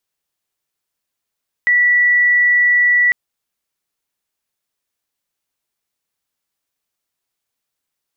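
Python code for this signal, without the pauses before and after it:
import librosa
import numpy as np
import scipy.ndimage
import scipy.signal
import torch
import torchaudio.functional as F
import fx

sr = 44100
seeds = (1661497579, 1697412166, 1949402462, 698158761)

y = 10.0 ** (-9.5 / 20.0) * np.sin(2.0 * np.pi * (1950.0 * (np.arange(round(1.45 * sr)) / sr)))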